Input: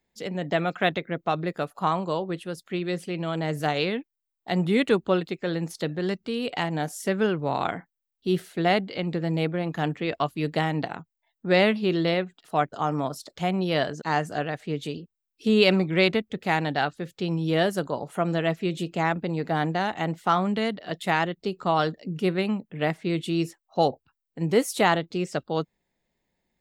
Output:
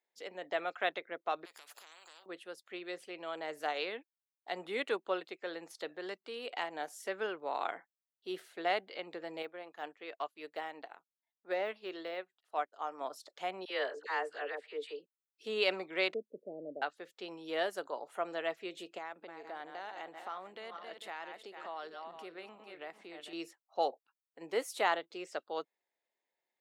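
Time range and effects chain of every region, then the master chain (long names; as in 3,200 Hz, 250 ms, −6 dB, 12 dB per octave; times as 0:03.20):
0:01.45–0:02.26: downward compressor 16 to 1, threshold −35 dBFS + every bin compressed towards the loudest bin 10 to 1
0:09.42–0:13.01: de-essing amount 95% + low-shelf EQ 160 Hz −8 dB + expander for the loud parts, over −44 dBFS
0:13.65–0:15.00: loudspeaker in its box 360–9,900 Hz, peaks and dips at 450 Hz +8 dB, 700 Hz −6 dB, 1,900 Hz +3 dB, 6,300 Hz −9 dB + all-pass dispersion lows, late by 55 ms, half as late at 980 Hz
0:16.14–0:16.82: Chebyshev band-pass filter 120–610 Hz, order 5 + low-shelf EQ 160 Hz +9.5 dB
0:18.98–0:23.33: feedback delay that plays each chunk backwards 224 ms, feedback 44%, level −10 dB + downward compressor 3 to 1, threshold −32 dBFS
whole clip: Bessel high-pass filter 560 Hz, order 4; high-shelf EQ 3,800 Hz −6.5 dB; level −7 dB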